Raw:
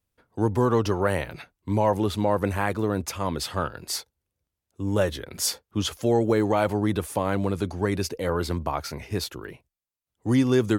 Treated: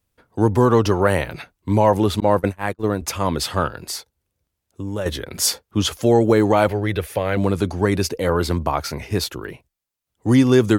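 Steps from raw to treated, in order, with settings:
0:02.20–0:03.02: noise gate −23 dBFS, range −50 dB
0:03.70–0:05.06: downward compressor 2 to 1, threshold −37 dBFS, peak gain reduction 11 dB
0:06.68–0:07.37: graphic EQ with 10 bands 250 Hz −12 dB, 500 Hz +4 dB, 1,000 Hz −10 dB, 2,000 Hz +6 dB, 8,000 Hz −11 dB
level +6.5 dB

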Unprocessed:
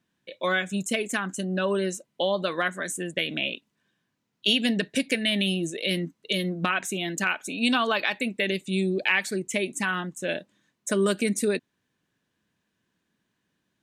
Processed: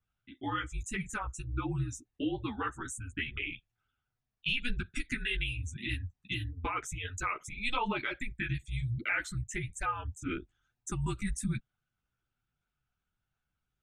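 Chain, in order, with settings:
spectral envelope exaggerated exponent 1.5
multi-voice chorus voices 4, 1.1 Hz, delay 12 ms, depth 4 ms
frequency shifter −250 Hz
level −5.5 dB

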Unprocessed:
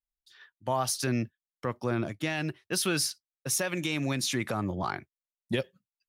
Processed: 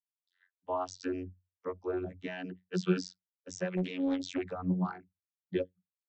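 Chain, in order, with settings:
spectral dynamics exaggerated over time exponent 1.5
channel vocoder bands 32, saw 91.3 Hz
0:03.77–0:04.44: highs frequency-modulated by the lows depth 0.56 ms

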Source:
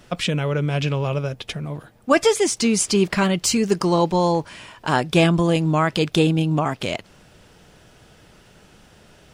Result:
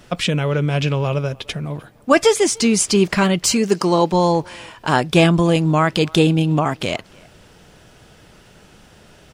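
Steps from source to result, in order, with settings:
0:03.52–0:04.12: high-pass filter 170 Hz
far-end echo of a speakerphone 300 ms, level −25 dB
level +3 dB

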